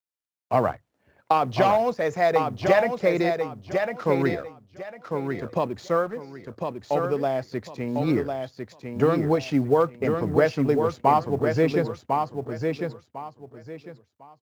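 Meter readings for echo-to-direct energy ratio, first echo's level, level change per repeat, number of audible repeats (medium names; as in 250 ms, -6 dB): -4.5 dB, -5.0 dB, -12.5 dB, 3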